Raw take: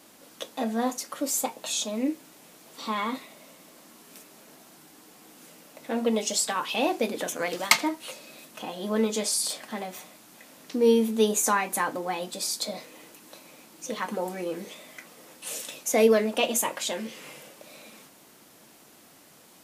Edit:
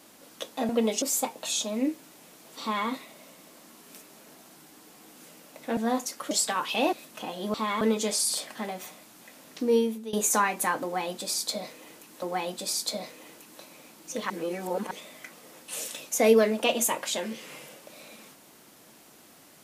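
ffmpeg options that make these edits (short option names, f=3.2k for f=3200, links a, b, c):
-filter_complex "[0:a]asplit=12[a][b][c][d][e][f][g][h][i][j][k][l];[a]atrim=end=0.692[m];[b]atrim=start=5.978:end=6.312[n];[c]atrim=start=1.228:end=5.982[o];[d]atrim=start=0.688:end=1.232[p];[e]atrim=start=6.308:end=6.932[q];[f]atrim=start=8.328:end=8.942[r];[g]atrim=start=2.818:end=3.092[s];[h]atrim=start=8.938:end=11.26,asetpts=PTS-STARTPTS,afade=t=out:st=1.772:d=0.55:silence=0.0891251[t];[i]atrim=start=11.26:end=13.352,asetpts=PTS-STARTPTS,afade=t=in:d=0.004:c=hsin:silence=0.0891251[u];[j]atrim=start=11.958:end=14.042[v];[k]atrim=start=14.038:end=14.652,asetpts=PTS-STARTPTS,areverse[w];[l]atrim=start=14.648[x];[m][n]acrossfade=d=0.004:c1=hsin:c2=hsin[y];[y][o]acrossfade=d=0.004:c1=hsin:c2=hsin[z];[z][p]acrossfade=d=0.004:c1=hsin:c2=hsin[aa];[aa][q]acrossfade=d=0.004:c1=hsin:c2=hsin[ab];[ab][r]acrossfade=d=0.004:c1=hsin:c2=hsin[ac];[ac][s]acrossfade=d=0.004:c1=hsin:c2=hsin[ad];[t][u]concat=n=2:v=0:a=1[ae];[ad][ae]acrossfade=d=0.004:c1=hsin:c2=hsin[af];[af][v]acrossfade=d=0.004:c1=hsin:c2=hsin[ag];[ag][w]acrossfade=d=0.004:c1=hsin:c2=hsin[ah];[ah][x]acrossfade=d=0.004:c1=hsin:c2=hsin"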